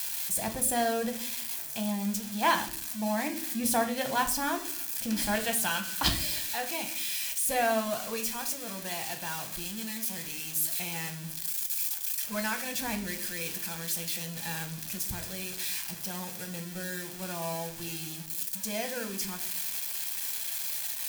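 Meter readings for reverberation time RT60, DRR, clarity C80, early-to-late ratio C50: 0.50 s, 4.5 dB, 15.5 dB, 12.0 dB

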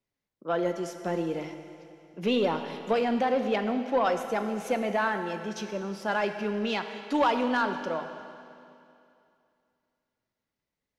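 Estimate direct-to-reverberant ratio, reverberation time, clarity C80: 7.0 dB, 2.6 s, 9.0 dB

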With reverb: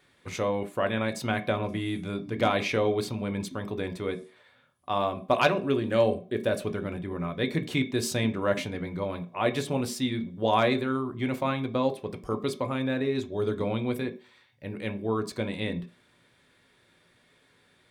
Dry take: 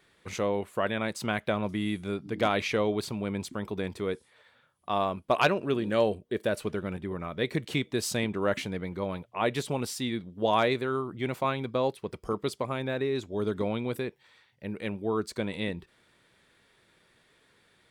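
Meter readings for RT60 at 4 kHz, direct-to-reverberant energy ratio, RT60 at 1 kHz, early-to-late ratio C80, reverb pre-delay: 0.35 s, 6.0 dB, 0.45 s, 20.5 dB, 3 ms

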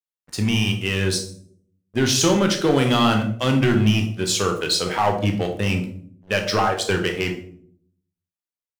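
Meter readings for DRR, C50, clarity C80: 3.5 dB, 9.0 dB, 12.5 dB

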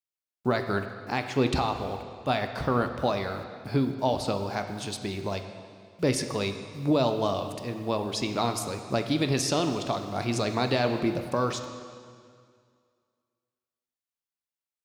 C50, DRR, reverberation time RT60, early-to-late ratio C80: 8.0 dB, 6.0 dB, 2.1 s, 9.0 dB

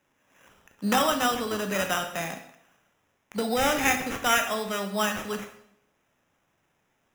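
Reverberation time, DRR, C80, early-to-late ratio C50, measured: 0.70 s, 5.0 dB, 11.5 dB, 8.5 dB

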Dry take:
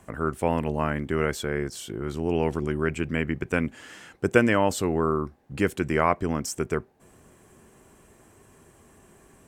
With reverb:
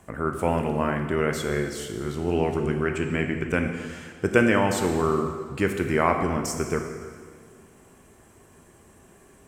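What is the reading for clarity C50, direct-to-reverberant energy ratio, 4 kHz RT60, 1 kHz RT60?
6.0 dB, 4.0 dB, 1.7 s, 1.8 s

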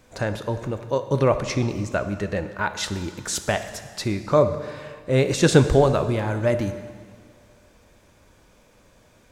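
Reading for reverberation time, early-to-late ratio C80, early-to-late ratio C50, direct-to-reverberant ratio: 1.9 s, 11.5 dB, 10.5 dB, 9.0 dB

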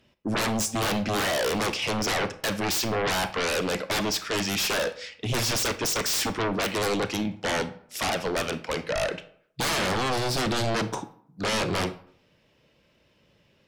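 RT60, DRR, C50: 0.65 s, 12.0 dB, 14.5 dB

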